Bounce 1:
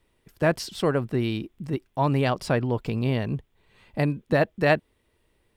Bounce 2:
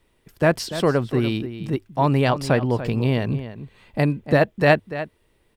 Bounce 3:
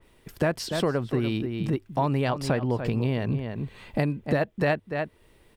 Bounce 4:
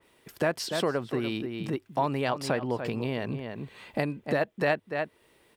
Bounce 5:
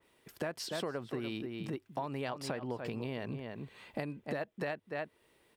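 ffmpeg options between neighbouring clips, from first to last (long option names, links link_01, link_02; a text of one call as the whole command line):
ffmpeg -i in.wav -filter_complex "[0:a]bandreject=frequency=50:width_type=h:width=6,bandreject=frequency=100:width_type=h:width=6,asplit=2[link_01][link_02];[link_02]adelay=291.5,volume=-12dB,highshelf=frequency=4000:gain=-6.56[link_03];[link_01][link_03]amix=inputs=2:normalize=0,volume=4dB" out.wav
ffmpeg -i in.wav -af "acompressor=threshold=-31dB:ratio=3,adynamicequalizer=threshold=0.00251:dfrequency=2900:dqfactor=0.7:tfrequency=2900:tqfactor=0.7:attack=5:release=100:ratio=0.375:range=1.5:mode=cutabove:tftype=highshelf,volume=5.5dB" out.wav
ffmpeg -i in.wav -af "highpass=frequency=330:poles=1" out.wav
ffmpeg -i in.wav -af "acompressor=threshold=-27dB:ratio=6,volume=-6dB" out.wav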